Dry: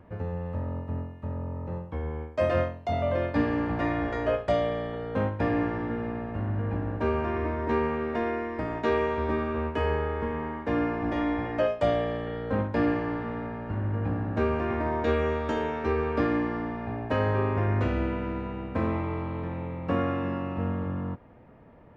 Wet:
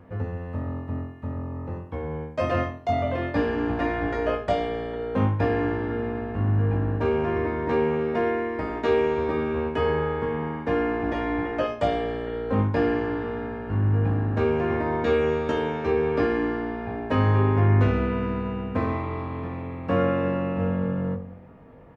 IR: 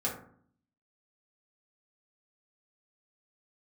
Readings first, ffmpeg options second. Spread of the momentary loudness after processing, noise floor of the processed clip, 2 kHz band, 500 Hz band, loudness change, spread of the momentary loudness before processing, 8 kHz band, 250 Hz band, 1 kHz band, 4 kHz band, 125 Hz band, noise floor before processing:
9 LU, -39 dBFS, +2.5 dB, +3.5 dB, +3.5 dB, 8 LU, n/a, +2.5 dB, +2.5 dB, +3.5 dB, +5.0 dB, -44 dBFS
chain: -filter_complex "[0:a]asplit=2[a][b];[b]adelay=20,volume=-6.5dB[c];[a][c]amix=inputs=2:normalize=0,asplit=2[d][e];[1:a]atrim=start_sample=2205[f];[e][f]afir=irnorm=-1:irlink=0,volume=-10.5dB[g];[d][g]amix=inputs=2:normalize=0"

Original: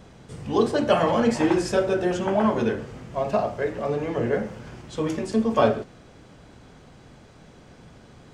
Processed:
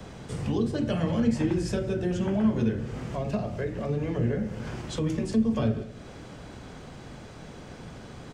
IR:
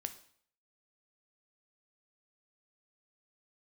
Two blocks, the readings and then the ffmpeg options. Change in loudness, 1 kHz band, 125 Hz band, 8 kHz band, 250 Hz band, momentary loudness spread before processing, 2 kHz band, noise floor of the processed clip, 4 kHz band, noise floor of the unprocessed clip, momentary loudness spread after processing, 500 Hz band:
-4.5 dB, -13.0 dB, +4.0 dB, -4.5 dB, -1.0 dB, 13 LU, -8.5 dB, -45 dBFS, -6.0 dB, -50 dBFS, 19 LU, -8.5 dB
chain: -filter_complex "[0:a]acrossover=split=190|580|1400[a][b][c][d];[c]acompressor=threshold=-43dB:ratio=6[e];[a][b][e][d]amix=inputs=4:normalize=0,aecho=1:1:189:0.0794,acrossover=split=200[f][g];[g]acompressor=threshold=-40dB:ratio=3[h];[f][h]amix=inputs=2:normalize=0,volume=5.5dB"

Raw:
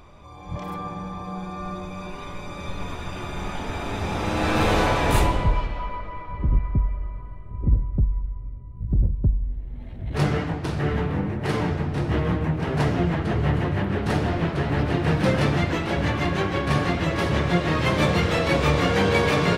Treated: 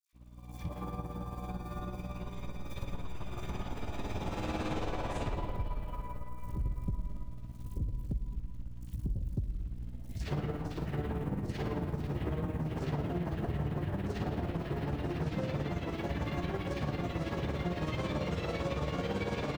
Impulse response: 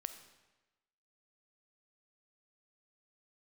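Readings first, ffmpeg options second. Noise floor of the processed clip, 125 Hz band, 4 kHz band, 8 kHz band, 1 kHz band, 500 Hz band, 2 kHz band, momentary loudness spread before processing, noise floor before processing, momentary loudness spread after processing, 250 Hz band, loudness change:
-44 dBFS, -12.0 dB, -15.5 dB, -16.0 dB, -14.5 dB, -13.0 dB, -17.0 dB, 14 LU, -36 dBFS, 9 LU, -11.5 dB, -13.0 dB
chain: -filter_complex "[0:a]aeval=exprs='val(0)+0.02*(sin(2*PI*60*n/s)+sin(2*PI*2*60*n/s)/2+sin(2*PI*3*60*n/s)/3+sin(2*PI*4*60*n/s)/4+sin(2*PI*5*60*n/s)/5)':c=same,lowpass=f=7.8k:w=0.5412,lowpass=f=7.8k:w=1.3066,asplit=2[a][b];[b]asoftclip=type=tanh:threshold=-23.5dB,volume=-7dB[c];[a][c]amix=inputs=2:normalize=0,equalizer=f=1.9k:w=0.53:g=-2.5,acrusher=bits=9:dc=4:mix=0:aa=0.000001,agate=range=-33dB:threshold=-21dB:ratio=3:detection=peak,acrossover=split=1700|5100[d][e][f];[e]adelay=60[g];[d]adelay=130[h];[h][g][f]amix=inputs=3:normalize=0,dynaudnorm=f=330:g=3:m=11.5dB,tremolo=f=18:d=0.57[i];[1:a]atrim=start_sample=2205[j];[i][j]afir=irnorm=-1:irlink=0,acompressor=threshold=-38dB:ratio=2.5,volume=-1.5dB"

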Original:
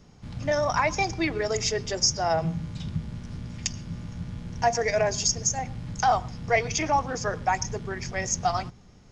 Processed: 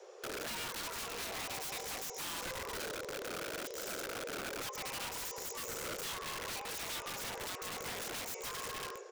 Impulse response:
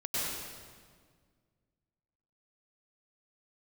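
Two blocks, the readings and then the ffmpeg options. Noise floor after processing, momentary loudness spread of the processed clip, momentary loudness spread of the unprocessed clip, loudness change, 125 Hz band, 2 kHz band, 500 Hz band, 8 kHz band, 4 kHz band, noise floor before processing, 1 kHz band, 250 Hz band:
-46 dBFS, 2 LU, 13 LU, -13.0 dB, -23.0 dB, -10.5 dB, -15.5 dB, -12.0 dB, -8.5 dB, -52 dBFS, -17.0 dB, -16.5 dB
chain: -filter_complex "[0:a]afreqshift=350,asplit=2[a][b];[1:a]atrim=start_sample=2205,afade=t=out:st=0.43:d=0.01,atrim=end_sample=19404[c];[b][c]afir=irnorm=-1:irlink=0,volume=-13.5dB[d];[a][d]amix=inputs=2:normalize=0,acompressor=threshold=-34dB:ratio=16,bandreject=f=167.3:t=h:w=4,bandreject=f=334.6:t=h:w=4,bandreject=f=501.9:t=h:w=4,bandreject=f=669.2:t=h:w=4,bandreject=f=836.5:t=h:w=4,bandreject=f=1.0038k:t=h:w=4,bandreject=f=1.1711k:t=h:w=4,bandreject=f=1.3384k:t=h:w=4,bandreject=f=1.5057k:t=h:w=4,bandreject=f=1.673k:t=h:w=4,bandreject=f=1.8403k:t=h:w=4,bandreject=f=2.0076k:t=h:w=4,bandreject=f=2.1749k:t=h:w=4,bandreject=f=2.3422k:t=h:w=4,bandreject=f=2.5095k:t=h:w=4,bandreject=f=2.6768k:t=h:w=4,bandreject=f=2.8441k:t=h:w=4,bandreject=f=3.0114k:t=h:w=4,bandreject=f=3.1787k:t=h:w=4,bandreject=f=3.346k:t=h:w=4,bandreject=f=3.5133k:t=h:w=4,bandreject=f=3.6806k:t=h:w=4,bandreject=f=3.8479k:t=h:w=4,bandreject=f=4.0152k:t=h:w=4,bandreject=f=4.1825k:t=h:w=4,bandreject=f=4.3498k:t=h:w=4,bandreject=f=4.5171k:t=h:w=4,bandreject=f=4.6844k:t=h:w=4,bandreject=f=4.8517k:t=h:w=4,bandreject=f=5.019k:t=h:w=4,asplit=2[e][f];[f]aecho=0:1:334|668|1002|1336|1670:0.133|0.0733|0.0403|0.0222|0.0122[g];[e][g]amix=inputs=2:normalize=0,aeval=exprs='(mod(53.1*val(0)+1,2)-1)/53.1':c=same,volume=-1.5dB"

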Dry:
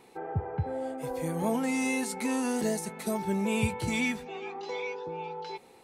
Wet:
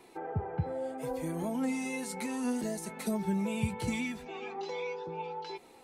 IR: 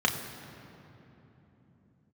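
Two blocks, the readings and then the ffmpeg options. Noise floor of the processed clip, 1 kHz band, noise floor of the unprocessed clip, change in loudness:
-56 dBFS, -4.0 dB, -56 dBFS, -3.5 dB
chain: -filter_complex "[0:a]acrossover=split=220[a][b];[b]acompressor=threshold=-35dB:ratio=6[c];[a][c]amix=inputs=2:normalize=0,flanger=delay=2.9:depth=3.1:regen=45:speed=0.72:shape=sinusoidal,volume=4dB"

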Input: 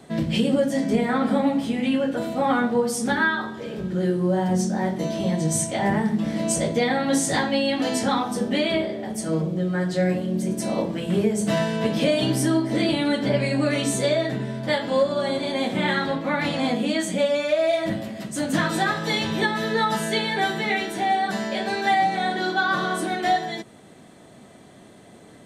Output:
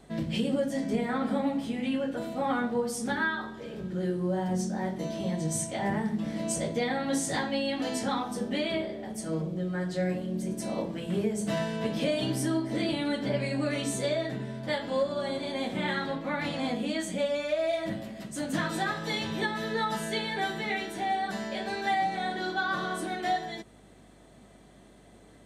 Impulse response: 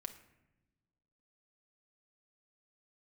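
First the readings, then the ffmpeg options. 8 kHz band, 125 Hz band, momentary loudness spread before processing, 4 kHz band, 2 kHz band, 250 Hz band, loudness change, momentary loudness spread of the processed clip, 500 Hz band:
-7.5 dB, -7.5 dB, 4 LU, -7.5 dB, -7.5 dB, -7.5 dB, -7.5 dB, 4 LU, -7.5 dB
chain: -af "aeval=exprs='val(0)+0.00224*(sin(2*PI*50*n/s)+sin(2*PI*2*50*n/s)/2+sin(2*PI*3*50*n/s)/3+sin(2*PI*4*50*n/s)/4+sin(2*PI*5*50*n/s)/5)':c=same,volume=-7.5dB"

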